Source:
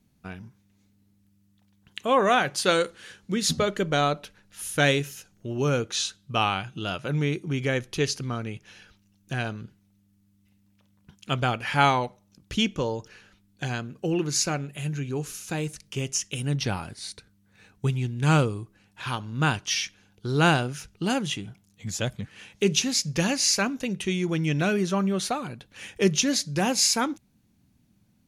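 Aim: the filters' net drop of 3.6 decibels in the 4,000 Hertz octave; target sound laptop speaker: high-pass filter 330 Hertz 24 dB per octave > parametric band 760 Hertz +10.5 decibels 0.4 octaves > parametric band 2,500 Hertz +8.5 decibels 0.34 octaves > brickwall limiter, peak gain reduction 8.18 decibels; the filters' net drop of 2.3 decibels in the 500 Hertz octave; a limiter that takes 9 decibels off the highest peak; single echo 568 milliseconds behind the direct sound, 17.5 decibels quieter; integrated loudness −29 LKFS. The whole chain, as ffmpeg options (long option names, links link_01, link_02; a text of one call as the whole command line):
ffmpeg -i in.wav -af "equalizer=frequency=500:width_type=o:gain=-5.5,equalizer=frequency=4000:width_type=o:gain=-7,alimiter=limit=-17dB:level=0:latency=1,highpass=frequency=330:width=0.5412,highpass=frequency=330:width=1.3066,equalizer=frequency=760:width_type=o:width=0.4:gain=10.5,equalizer=frequency=2500:width_type=o:width=0.34:gain=8.5,aecho=1:1:568:0.133,volume=2dB,alimiter=limit=-16dB:level=0:latency=1" out.wav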